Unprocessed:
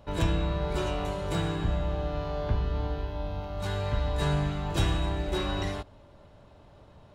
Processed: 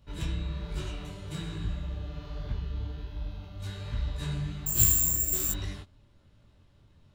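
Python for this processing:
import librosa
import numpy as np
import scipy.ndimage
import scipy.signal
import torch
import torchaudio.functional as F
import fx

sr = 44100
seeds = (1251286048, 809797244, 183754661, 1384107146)

y = fx.peak_eq(x, sr, hz=690.0, db=-14.5, octaves=1.9)
y = fx.resample_bad(y, sr, factor=6, down='filtered', up='zero_stuff', at=(4.66, 5.52))
y = fx.detune_double(y, sr, cents=43)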